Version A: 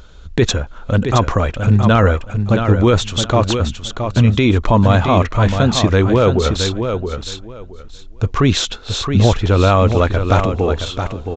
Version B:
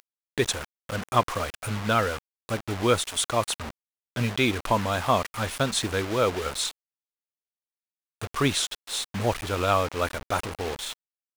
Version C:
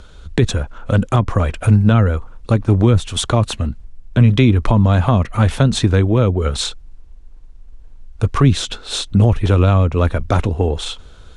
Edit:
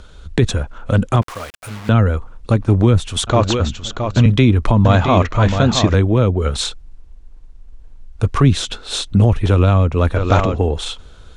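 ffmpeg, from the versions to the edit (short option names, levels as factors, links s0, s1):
-filter_complex "[0:a]asplit=3[s0][s1][s2];[2:a]asplit=5[s3][s4][s5][s6][s7];[s3]atrim=end=1.222[s8];[1:a]atrim=start=1.218:end=1.892[s9];[s4]atrim=start=1.888:end=3.272[s10];[s0]atrim=start=3.268:end=4.262[s11];[s5]atrim=start=4.258:end=4.852[s12];[s1]atrim=start=4.848:end=5.942[s13];[s6]atrim=start=5.938:end=10.162[s14];[s2]atrim=start=10.158:end=10.582[s15];[s7]atrim=start=10.578[s16];[s8][s9]acrossfade=d=0.004:c1=hsin:c2=hsin[s17];[s17][s10]acrossfade=d=0.004:c1=hsin:c2=hsin[s18];[s18][s11]acrossfade=d=0.004:c1=hsin:c2=hsin[s19];[s19][s12]acrossfade=d=0.004:c1=hsin:c2=hsin[s20];[s20][s13]acrossfade=d=0.004:c1=hsin:c2=hsin[s21];[s21][s14]acrossfade=d=0.004:c1=hsin:c2=hsin[s22];[s22][s15]acrossfade=d=0.004:c1=hsin:c2=hsin[s23];[s23][s16]acrossfade=d=0.004:c1=hsin:c2=hsin"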